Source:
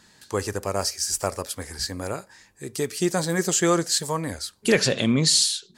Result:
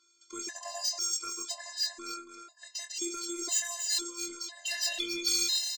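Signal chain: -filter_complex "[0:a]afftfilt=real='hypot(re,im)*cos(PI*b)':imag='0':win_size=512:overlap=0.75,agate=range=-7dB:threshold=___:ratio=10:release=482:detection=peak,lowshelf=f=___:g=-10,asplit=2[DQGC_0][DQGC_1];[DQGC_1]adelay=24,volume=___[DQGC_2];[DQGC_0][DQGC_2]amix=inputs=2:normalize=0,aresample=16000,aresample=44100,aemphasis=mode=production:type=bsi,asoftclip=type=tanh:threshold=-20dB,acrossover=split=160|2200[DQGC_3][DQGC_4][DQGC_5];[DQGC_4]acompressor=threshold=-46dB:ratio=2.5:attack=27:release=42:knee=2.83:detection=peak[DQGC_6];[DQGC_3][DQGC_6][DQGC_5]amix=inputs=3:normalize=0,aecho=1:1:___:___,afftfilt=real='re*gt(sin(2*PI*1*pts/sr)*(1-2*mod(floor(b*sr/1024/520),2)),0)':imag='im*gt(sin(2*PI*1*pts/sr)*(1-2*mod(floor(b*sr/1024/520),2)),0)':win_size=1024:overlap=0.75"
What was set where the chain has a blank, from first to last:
-49dB, 310, -9dB, 276, 0.447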